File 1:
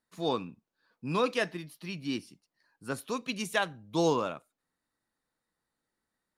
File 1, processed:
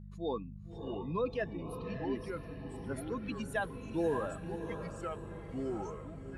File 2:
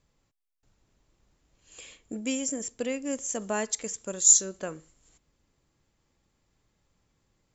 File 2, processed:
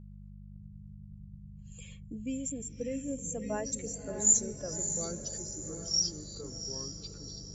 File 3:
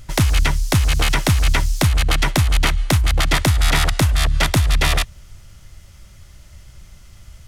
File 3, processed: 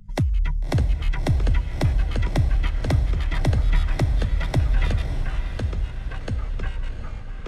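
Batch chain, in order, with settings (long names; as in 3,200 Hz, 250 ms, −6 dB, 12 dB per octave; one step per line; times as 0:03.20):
expanding power law on the bin magnitudes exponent 1.8
hum with harmonics 50 Hz, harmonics 4, −43 dBFS −3 dB per octave
feedback delay with all-pass diffusion 607 ms, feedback 50%, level −8.5 dB
delay with pitch and tempo change per echo 560 ms, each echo −4 semitones, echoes 2, each echo −6 dB
level −5.5 dB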